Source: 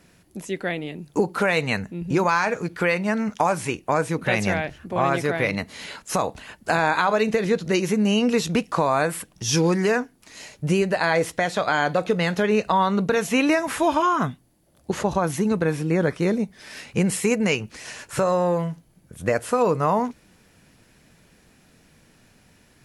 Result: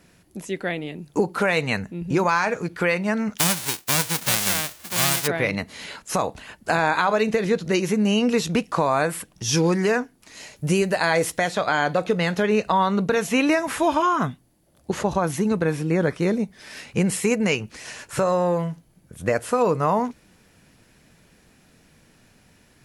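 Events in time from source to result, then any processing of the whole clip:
0:03.37–0:05.26: spectral envelope flattened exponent 0.1
0:10.56–0:11.49: high-shelf EQ 6,600 Hz +10 dB

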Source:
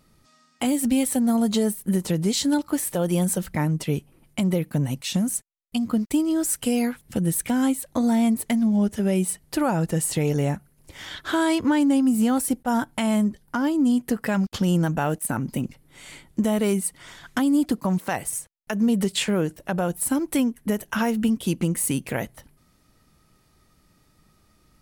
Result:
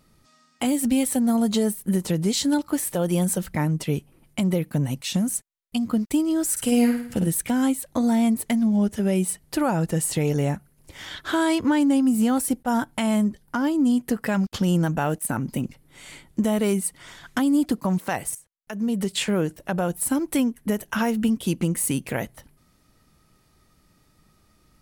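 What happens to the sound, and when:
0:06.51–0:07.27: flutter between parallel walls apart 9.3 metres, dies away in 0.58 s
0:18.35–0:19.33: fade in, from −15.5 dB

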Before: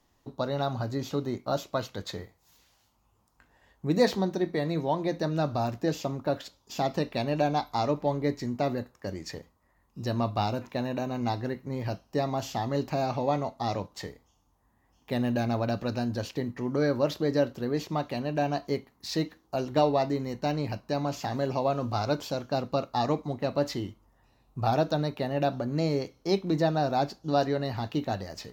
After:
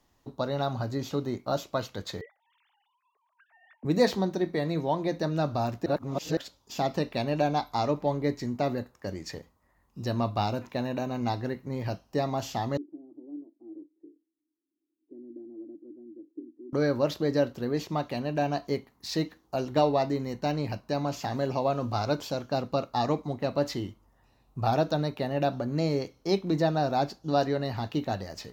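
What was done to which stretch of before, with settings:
0:02.21–0:03.85: three sine waves on the formant tracks
0:05.86–0:06.37: reverse
0:12.77–0:16.73: flat-topped band-pass 320 Hz, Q 5.7

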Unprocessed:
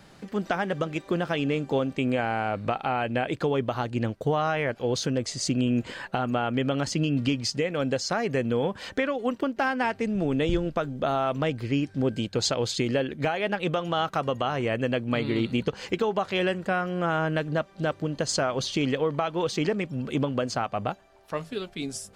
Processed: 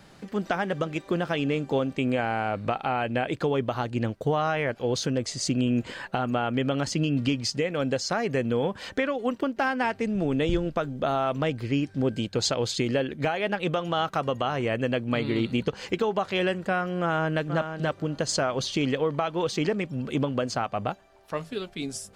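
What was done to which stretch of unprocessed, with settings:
0:17.01–0:17.41: delay throw 480 ms, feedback 10%, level −8.5 dB

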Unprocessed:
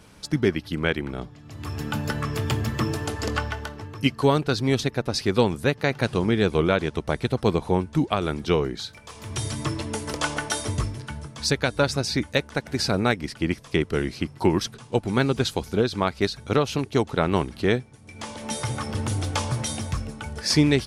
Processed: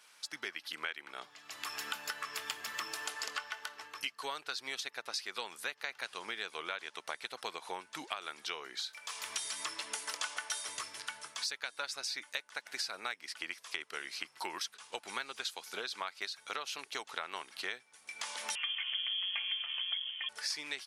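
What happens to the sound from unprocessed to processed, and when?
0:18.55–0:20.29: voice inversion scrambler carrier 3,300 Hz
whole clip: automatic gain control; high-pass filter 1,300 Hz 12 dB per octave; downward compressor 4 to 1, threshold −33 dBFS; level −4.5 dB

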